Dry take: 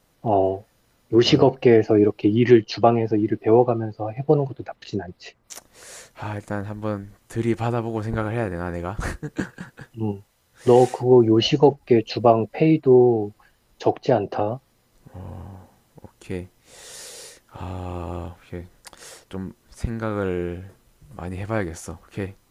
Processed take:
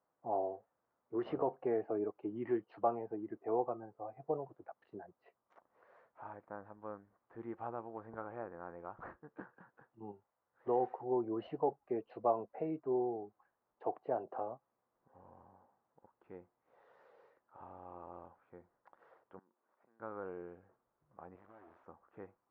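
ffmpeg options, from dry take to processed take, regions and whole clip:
ffmpeg -i in.wav -filter_complex "[0:a]asettb=1/sr,asplit=3[link_01][link_02][link_03];[link_01]atrim=end=19.394[link_04];[link_02]atrim=start=19.39:end=20,asetpts=PTS-STARTPTS,afade=type=in:duration=0.004:curve=qsin,afade=type=out:start_time=0.606:duration=0.004:curve=qsin,highpass=300,acompressor=threshold=-49dB:ratio=6:attack=3.2:release=140:knee=1:detection=peak[link_05];[link_03]atrim=start=19.996[link_06];[link_04][link_05]acrossfade=duration=0.004:curve1=hsin:curve2=qsin[link_07];[link_07][link_06]acrossfade=duration=0.004:curve1=qsin:curve2=hsin,asettb=1/sr,asplit=3[link_08][link_09][link_10];[link_08]atrim=end=21.364[link_11];[link_09]atrim=start=21.36:end=21.84,asetpts=PTS-STARTPTS,afade=type=in:duration=0.004:curve=qsin,afade=type=out:start_time=0.476:duration=0.004:curve=qsin,aecho=1:1:3.1:0.78,atrim=end_sample=21168,acompressor=threshold=-32dB:ratio=4:attack=3.2:release=140:knee=1:detection=peak,acrusher=bits=4:dc=4:mix=0:aa=0.000001[link_12];[link_10]atrim=start=21.836[link_13];[link_11][link_12]acrossfade=duration=0.004:curve1=hsin:curve2=qsin[link_14];[link_14][link_13]acrossfade=duration=0.004:curve1=qsin:curve2=hsin,lowpass=frequency=1100:width=0.5412,lowpass=frequency=1100:width=1.3066,aderivative,volume=5dB" out.wav

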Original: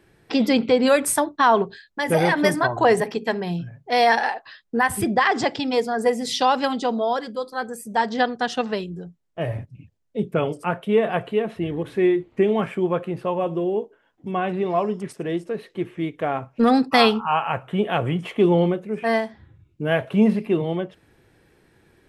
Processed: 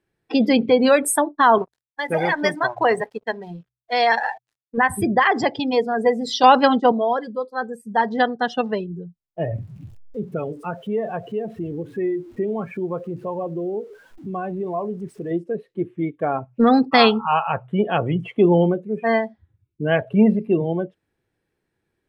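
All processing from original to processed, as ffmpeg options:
ffmpeg -i in.wav -filter_complex "[0:a]asettb=1/sr,asplit=3[link_01][link_02][link_03];[link_01]atrim=end=1.584[link_04];[link_02]atrim=start=1.58:end=4.78,asetpts=PTS-STARTPTS,afade=type=in:duration=0.004:curve=qsin,afade=type=out:start_time=3.196:duration=0.004:curve=qsin,lowshelf=frequency=460:gain=-7,aeval=exprs='sgn(val(0))*max(abs(val(0))-0.0141,0)':channel_layout=same[link_05];[link_03]atrim=start=4.776[link_06];[link_04][link_05]acrossfade=duration=0.004:curve1=hsin:curve2=qsin[link_07];[link_07][link_06]acrossfade=duration=0.004:curve1=qsin:curve2=hsin,asettb=1/sr,asplit=3[link_08][link_09][link_10];[link_08]atrim=end=6.434[link_11];[link_09]atrim=start=6.43:end=6.92,asetpts=PTS-STARTPTS,afade=type=in:duration=0.004:curve=qsin,afade=type=out:start_time=0.486:duration=0.004:curve=qsin,agate=range=-33dB:threshold=-25dB:ratio=3:release=100:detection=peak,highshelf=frequency=4800:gain=-4.5,acontrast=55[link_12];[link_10]atrim=start=6.916[link_13];[link_11][link_12]acrossfade=duration=0.004:curve1=hsin:curve2=qsin[link_14];[link_14][link_13]acrossfade=duration=0.004:curve1=qsin:curve2=hsin,asettb=1/sr,asplit=3[link_15][link_16][link_17];[link_15]atrim=end=9.564[link_18];[link_16]atrim=start=9.56:end=15.31,asetpts=PTS-STARTPTS,afade=type=in:duration=0.004:curve=qsin,afade=type=out:start_time=5.746:duration=0.004:curve=qsin,aeval=exprs='val(0)+0.5*0.0178*sgn(val(0))':channel_layout=same,acompressor=threshold=-35dB:ratio=1.5:attack=3.2:release=140:knee=1:detection=peak[link_19];[link_17]atrim=start=15.306[link_20];[link_18][link_19]acrossfade=duration=0.004:curve1=hsin:curve2=qsin[link_21];[link_21][link_20]acrossfade=duration=0.004:curve1=qsin:curve2=hsin,bandreject=frequency=61.86:width_type=h:width=4,bandreject=frequency=123.72:width_type=h:width=4,afftdn=noise_reduction=20:noise_floor=-29,volume=2dB" out.wav

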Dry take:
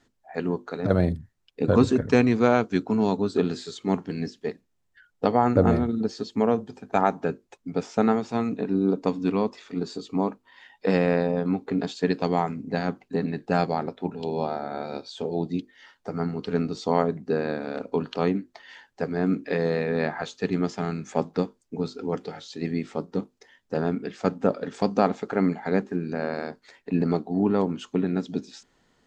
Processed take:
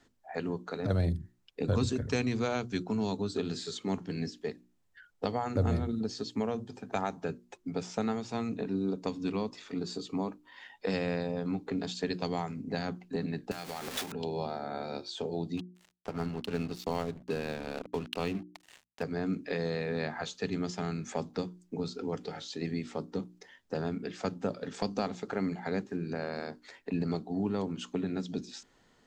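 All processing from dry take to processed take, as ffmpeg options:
ffmpeg -i in.wav -filter_complex "[0:a]asettb=1/sr,asplit=3[link_01][link_02][link_03];[link_01]atrim=end=13.514[link_04];[link_02]atrim=start=13.51:end=14.12,asetpts=PTS-STARTPTS,afade=type=in:duration=0.004:curve=qsin,afade=type=out:start_time=0.606:duration=0.004:curve=qsin,aeval=exprs='val(0)+0.5*0.0299*sgn(val(0))':channel_layout=same,acompressor=threshold=-29dB:ratio=10:attack=3.2:release=140:knee=1:detection=peak,tiltshelf=frequency=1100:gain=-7.5[link_05];[link_03]atrim=start=14.116[link_06];[link_04][link_05]acrossfade=duration=0.004:curve1=hsin:curve2=qsin[link_07];[link_07][link_06]acrossfade=duration=0.004:curve1=qsin:curve2=hsin,asettb=1/sr,asplit=3[link_08][link_09][link_10];[link_08]atrim=end=15.574[link_11];[link_09]atrim=start=15.57:end=19.03,asetpts=PTS-STARTPTS,afade=type=in:duration=0.004:curve=qsin,afade=type=out:start_time=3.456:duration=0.004:curve=qsin,equalizer=frequency=2700:width=5.5:gain=10,acompressor=mode=upward:threshold=-39dB:ratio=2.5:attack=3.2:release=140:knee=2.83:detection=peak,aeval=exprs='sgn(val(0))*max(abs(val(0))-0.01,0)':channel_layout=same[link_12];[link_10]atrim=start=19.026[link_13];[link_11][link_12]acrossfade=duration=0.004:curve1=hsin:curve2=qsin[link_14];[link_14][link_13]acrossfade=duration=0.004:curve1=qsin:curve2=hsin,bandreject=frequency=60:width_type=h:width=6,bandreject=frequency=120:width_type=h:width=6,bandreject=frequency=180:width_type=h:width=6,bandreject=frequency=240:width_type=h:width=6,bandreject=frequency=300:width_type=h:width=6,bandreject=frequency=360:width_type=h:width=6,acrossover=split=120|3000[link_15][link_16][link_17];[link_16]acompressor=threshold=-35dB:ratio=2.5[link_18];[link_15][link_18][link_17]amix=inputs=3:normalize=0" out.wav

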